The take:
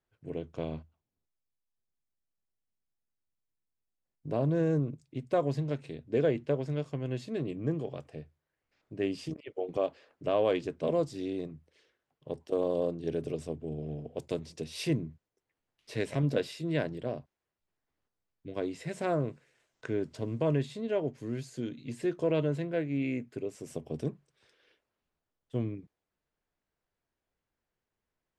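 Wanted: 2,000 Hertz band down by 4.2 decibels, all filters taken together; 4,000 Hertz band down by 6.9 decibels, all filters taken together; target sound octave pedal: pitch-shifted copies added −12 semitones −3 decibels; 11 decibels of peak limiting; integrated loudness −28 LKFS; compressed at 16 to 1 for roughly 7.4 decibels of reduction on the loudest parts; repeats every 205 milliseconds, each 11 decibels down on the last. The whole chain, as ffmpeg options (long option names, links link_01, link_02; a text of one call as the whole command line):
ffmpeg -i in.wav -filter_complex "[0:a]equalizer=frequency=2000:width_type=o:gain=-3.5,equalizer=frequency=4000:width_type=o:gain=-8,acompressor=threshold=-30dB:ratio=16,alimiter=level_in=6.5dB:limit=-24dB:level=0:latency=1,volume=-6.5dB,aecho=1:1:205|410|615:0.282|0.0789|0.0221,asplit=2[link_01][link_02];[link_02]asetrate=22050,aresample=44100,atempo=2,volume=-3dB[link_03];[link_01][link_03]amix=inputs=2:normalize=0,volume=12dB" out.wav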